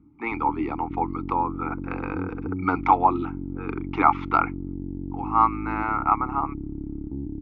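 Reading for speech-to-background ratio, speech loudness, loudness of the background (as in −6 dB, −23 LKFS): 9.0 dB, −25.0 LKFS, −34.0 LKFS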